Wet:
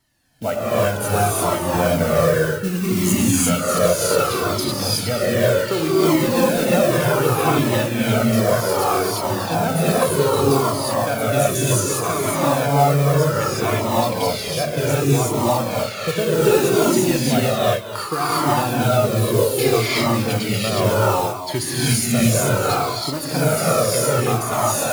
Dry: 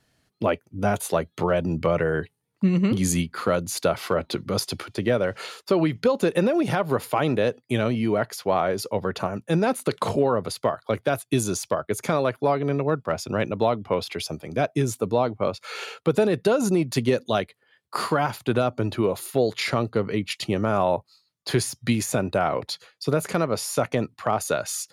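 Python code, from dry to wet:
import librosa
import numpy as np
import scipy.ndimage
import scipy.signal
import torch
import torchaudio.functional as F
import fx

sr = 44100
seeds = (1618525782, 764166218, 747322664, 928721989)

p1 = fx.high_shelf(x, sr, hz=9300.0, db=9.0)
p2 = fx.mod_noise(p1, sr, seeds[0], snr_db=15)
p3 = p2 + fx.echo_single(p2, sr, ms=250, db=-11.5, dry=0)
p4 = fx.rev_gated(p3, sr, seeds[1], gate_ms=390, shape='rising', drr_db=-7.5)
p5 = fx.comb_cascade(p4, sr, direction='falling', hz=0.65)
y = p5 * librosa.db_to_amplitude(2.0)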